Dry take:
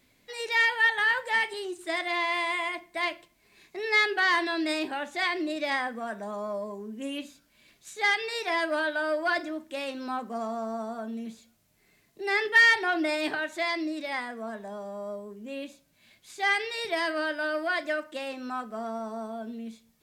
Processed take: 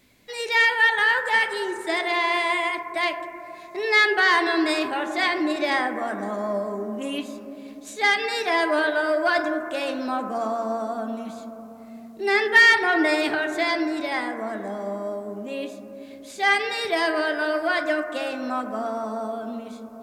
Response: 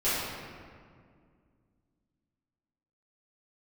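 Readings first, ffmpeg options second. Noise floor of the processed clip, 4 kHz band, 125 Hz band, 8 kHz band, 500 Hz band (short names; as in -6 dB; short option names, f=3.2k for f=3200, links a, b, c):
-42 dBFS, +5.0 dB, n/a, +5.0 dB, +7.0 dB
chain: -filter_complex "[0:a]asplit=2[a][b];[b]lowpass=f=1.9k:w=0.5412,lowpass=f=1.9k:w=1.3066[c];[1:a]atrim=start_sample=2205,asetrate=22050,aresample=44100[d];[c][d]afir=irnorm=-1:irlink=0,volume=-22.5dB[e];[a][e]amix=inputs=2:normalize=0,volume=5dB"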